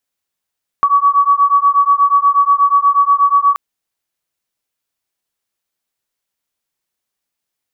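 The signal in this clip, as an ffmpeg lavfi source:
-f lavfi -i "aevalsrc='0.266*(sin(2*PI*1130*t)+sin(2*PI*1138.3*t))':d=2.73:s=44100"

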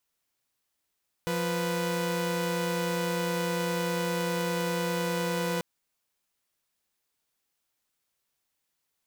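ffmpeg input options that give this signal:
-f lavfi -i "aevalsrc='0.0422*((2*mod(174.61*t,1)-1)+(2*mod(493.88*t,1)-1))':d=4.34:s=44100"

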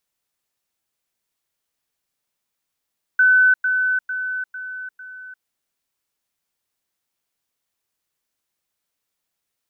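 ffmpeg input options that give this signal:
-f lavfi -i "aevalsrc='pow(10,(-10.5-6*floor(t/0.45))/20)*sin(2*PI*1510*t)*clip(min(mod(t,0.45),0.35-mod(t,0.45))/0.005,0,1)':d=2.25:s=44100"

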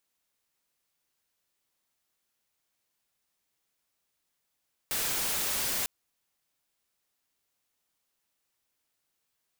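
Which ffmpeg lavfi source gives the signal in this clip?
-f lavfi -i "anoisesrc=c=white:a=0.0517:d=0.95:r=44100:seed=1"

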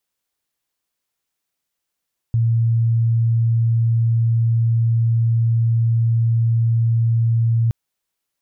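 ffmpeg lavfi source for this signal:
-f lavfi -i "sine=f=115:d=5.37:r=44100,volume=4.56dB"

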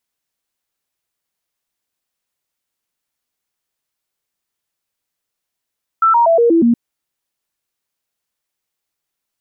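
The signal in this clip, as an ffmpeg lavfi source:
-f lavfi -i "aevalsrc='0.398*clip(min(mod(t,0.12),0.12-mod(t,0.12))/0.005,0,1)*sin(2*PI*1330*pow(2,-floor(t/0.12)/2)*mod(t,0.12))':d=0.72:s=44100"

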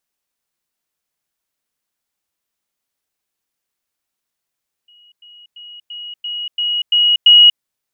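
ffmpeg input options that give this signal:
-f lavfi -i "aevalsrc='pow(10,(-45.5+6*floor(t/0.34))/20)*sin(2*PI*2900*t)*clip(min(mod(t,0.34),0.24-mod(t,0.34))/0.005,0,1)':d=2.72:s=44100"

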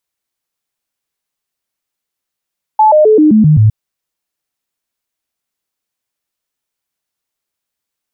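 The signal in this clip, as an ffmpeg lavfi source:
-f lavfi -i "aevalsrc='0.668*clip(min(mod(t,0.13),0.13-mod(t,0.13))/0.005,0,1)*sin(2*PI*864*pow(2,-floor(t/0.13)/2)*mod(t,0.13))':d=0.91:s=44100"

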